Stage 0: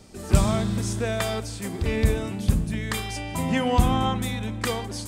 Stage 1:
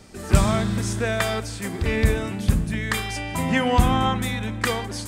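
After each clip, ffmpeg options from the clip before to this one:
-af "equalizer=f=1700:t=o:w=1.1:g=5.5,volume=1.19"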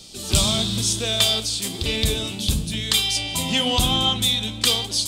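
-af "flanger=delay=5.8:depth=8.5:regen=69:speed=1:shape=sinusoidal,aeval=exprs='0.501*sin(PI/2*1.58*val(0)/0.501)':c=same,highshelf=f=2500:t=q:w=3:g=11.5,volume=0.501"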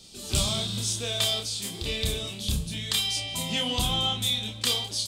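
-filter_complex "[0:a]asplit=2[s0][s1];[s1]adelay=29,volume=0.631[s2];[s0][s2]amix=inputs=2:normalize=0,volume=0.398"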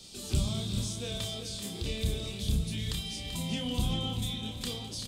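-filter_complex "[0:a]acrossover=split=400[s0][s1];[s1]acompressor=threshold=0.00891:ratio=3[s2];[s0][s2]amix=inputs=2:normalize=0,aecho=1:1:386|772|1158|1544|1930|2316:0.355|0.181|0.0923|0.0471|0.024|0.0122"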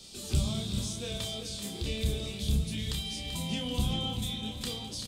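-filter_complex "[0:a]asplit=2[s0][s1];[s1]adelay=14,volume=0.299[s2];[s0][s2]amix=inputs=2:normalize=0"

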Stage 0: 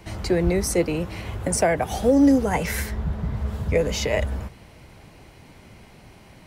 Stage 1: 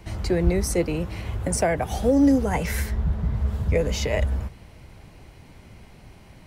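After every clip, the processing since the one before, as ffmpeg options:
-af "lowshelf=f=100:g=8.5,volume=0.75"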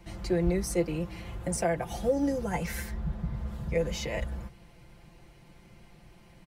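-af "aecho=1:1:5.8:0.72,volume=0.376"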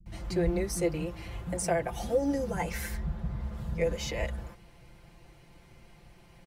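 -filter_complex "[0:a]acrossover=split=220[s0][s1];[s1]adelay=60[s2];[s0][s2]amix=inputs=2:normalize=0"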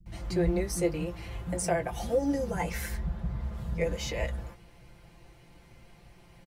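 -filter_complex "[0:a]asplit=2[s0][s1];[s1]adelay=17,volume=0.282[s2];[s0][s2]amix=inputs=2:normalize=0"

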